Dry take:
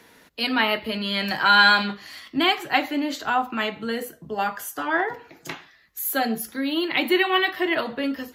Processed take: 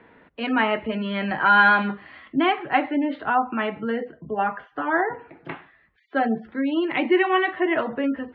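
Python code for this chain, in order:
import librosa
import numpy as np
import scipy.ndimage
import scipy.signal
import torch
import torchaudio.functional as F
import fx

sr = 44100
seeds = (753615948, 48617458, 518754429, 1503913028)

y = fx.spec_gate(x, sr, threshold_db=-30, keep='strong')
y = scipy.signal.sosfilt(scipy.signal.bessel(8, 1700.0, 'lowpass', norm='mag', fs=sr, output='sos'), y)
y = y * librosa.db_to_amplitude(2.5)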